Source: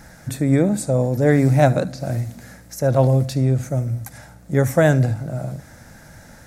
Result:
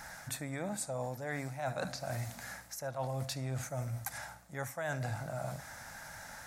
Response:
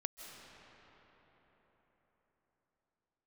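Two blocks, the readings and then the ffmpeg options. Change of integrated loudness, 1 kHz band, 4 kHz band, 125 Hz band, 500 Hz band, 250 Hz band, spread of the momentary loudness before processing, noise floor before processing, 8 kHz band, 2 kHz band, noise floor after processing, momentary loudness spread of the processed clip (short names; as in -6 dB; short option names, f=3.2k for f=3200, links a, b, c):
-20.5 dB, -13.5 dB, -8.0 dB, -21.5 dB, -20.0 dB, -24.0 dB, 15 LU, -45 dBFS, -8.0 dB, -12.0 dB, -53 dBFS, 8 LU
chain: -af "lowshelf=f=580:t=q:w=1.5:g=-11.5,areverse,acompressor=threshold=-33dB:ratio=12,areverse,volume=-1dB"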